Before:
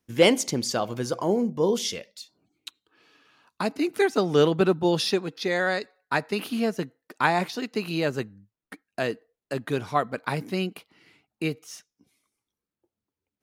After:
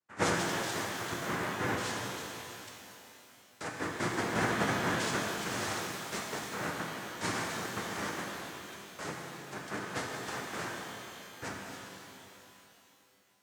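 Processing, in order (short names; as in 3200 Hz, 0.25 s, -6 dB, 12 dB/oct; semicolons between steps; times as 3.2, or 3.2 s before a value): ring modulator 660 Hz; noise vocoder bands 3; flange 1.1 Hz, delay 9.9 ms, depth 1.3 ms, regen -63%; shimmer reverb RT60 3.1 s, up +12 st, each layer -8 dB, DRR -1 dB; gain -6 dB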